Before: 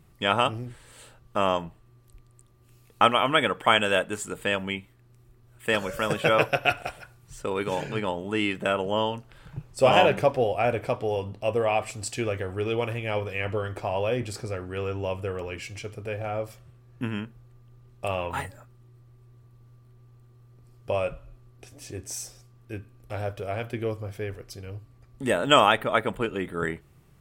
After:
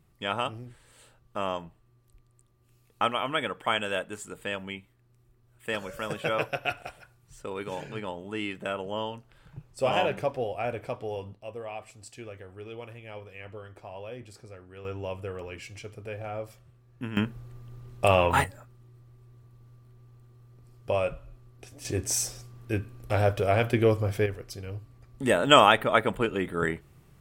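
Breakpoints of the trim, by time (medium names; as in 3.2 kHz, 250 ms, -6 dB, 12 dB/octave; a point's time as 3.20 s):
-7 dB
from 11.34 s -14 dB
from 14.85 s -5 dB
from 17.17 s +8 dB
from 18.44 s 0 dB
from 21.85 s +7.5 dB
from 24.26 s +1 dB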